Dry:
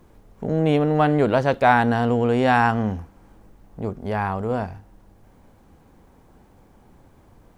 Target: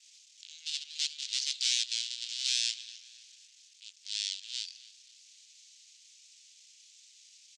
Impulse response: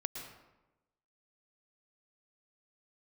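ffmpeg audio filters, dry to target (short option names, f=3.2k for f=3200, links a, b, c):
-filter_complex "[0:a]adynamicequalizer=threshold=0.00316:dfrequency=4400:dqfactor=2.6:tfrequency=4400:tqfactor=2.6:attack=5:release=100:ratio=0.375:range=3.5:mode=boostabove:tftype=bell,asplit=2[a][b];[b]acompressor=threshold=-30dB:ratio=6,volume=2dB[c];[a][c]amix=inputs=2:normalize=0,aeval=exprs='(tanh(15.8*val(0)+0.75)-tanh(0.75))/15.8':c=same,aexciter=amount=10.2:drive=8.8:freq=3.2k,aeval=exprs='max(val(0),0)':c=same,asuperpass=centerf=4200:order=8:qfactor=0.85,asplit=2[d][e];[e]adelay=264,lowpass=f=4.3k:p=1,volume=-16.5dB,asplit=2[f][g];[g]adelay=264,lowpass=f=4.3k:p=1,volume=0.52,asplit=2[h][i];[i]adelay=264,lowpass=f=4.3k:p=1,volume=0.52,asplit=2[j][k];[k]adelay=264,lowpass=f=4.3k:p=1,volume=0.52,asplit=2[l][m];[m]adelay=264,lowpass=f=4.3k:p=1,volume=0.52[n];[f][h][j][l][n]amix=inputs=5:normalize=0[o];[d][o]amix=inputs=2:normalize=0,volume=-4.5dB"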